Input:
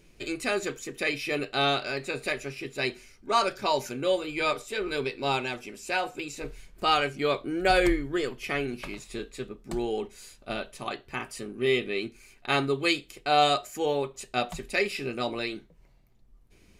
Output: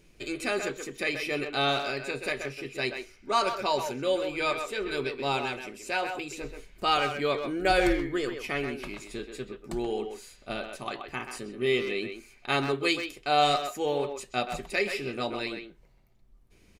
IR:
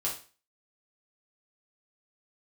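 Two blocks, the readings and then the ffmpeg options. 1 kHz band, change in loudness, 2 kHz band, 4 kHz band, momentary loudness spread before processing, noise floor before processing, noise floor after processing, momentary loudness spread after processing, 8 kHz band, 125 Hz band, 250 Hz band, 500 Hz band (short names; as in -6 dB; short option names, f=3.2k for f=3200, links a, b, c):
-1.0 dB, -1.0 dB, -1.0 dB, -1.0 dB, 13 LU, -58 dBFS, -59 dBFS, 13 LU, -1.5 dB, -1.5 dB, -1.0 dB, -1.0 dB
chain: -filter_complex "[0:a]asplit=2[a][b];[b]adelay=130,highpass=300,lowpass=3.4k,asoftclip=type=hard:threshold=-20.5dB,volume=-6dB[c];[a][c]amix=inputs=2:normalize=0,volume=-1.5dB"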